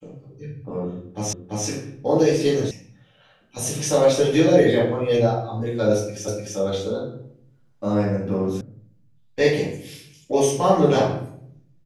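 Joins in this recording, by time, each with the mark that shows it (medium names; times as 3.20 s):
1.33 s: repeat of the last 0.34 s
2.71 s: sound stops dead
6.28 s: repeat of the last 0.3 s
8.61 s: sound stops dead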